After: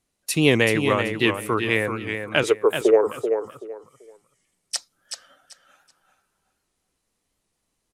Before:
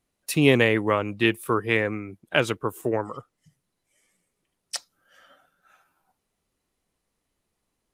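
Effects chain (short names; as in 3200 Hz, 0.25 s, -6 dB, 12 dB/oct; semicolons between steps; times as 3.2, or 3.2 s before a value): LPF 8800 Hz 12 dB/oct; high shelf 6200 Hz +11.5 dB; 2.43–3.07 resonant high-pass 430 Hz, resonance Q 4.9; feedback echo 0.383 s, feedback 23%, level -7 dB; record warp 78 rpm, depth 100 cents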